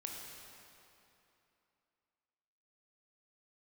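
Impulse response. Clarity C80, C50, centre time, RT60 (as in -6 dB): 2.0 dB, 1.0 dB, 120 ms, 2.9 s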